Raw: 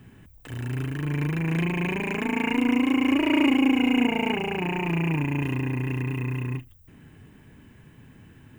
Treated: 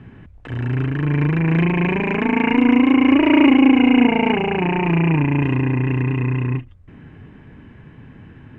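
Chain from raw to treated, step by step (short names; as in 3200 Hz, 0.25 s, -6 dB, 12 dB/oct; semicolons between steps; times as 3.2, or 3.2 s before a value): LPF 2400 Hz 12 dB/oct; gain +8.5 dB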